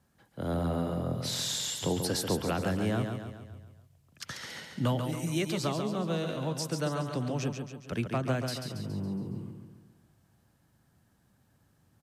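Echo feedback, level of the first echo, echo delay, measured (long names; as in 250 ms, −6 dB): 51%, −6.0 dB, 139 ms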